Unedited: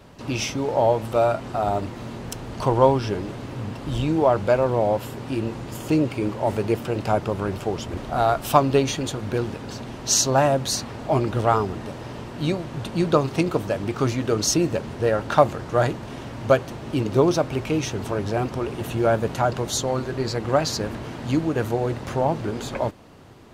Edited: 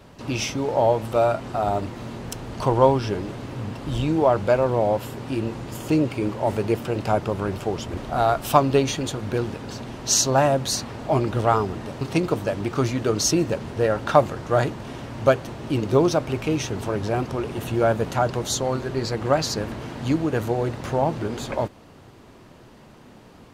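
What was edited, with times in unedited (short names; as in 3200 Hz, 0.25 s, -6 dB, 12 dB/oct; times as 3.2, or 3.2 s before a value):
12.01–13.24 cut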